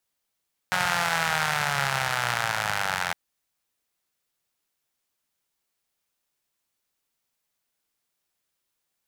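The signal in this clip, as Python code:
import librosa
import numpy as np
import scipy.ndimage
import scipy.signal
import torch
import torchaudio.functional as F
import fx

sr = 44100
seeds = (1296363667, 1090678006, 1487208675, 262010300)

y = fx.engine_four_rev(sr, seeds[0], length_s=2.41, rpm=5500, resonances_hz=(140.0, 840.0, 1400.0), end_rpm=2600)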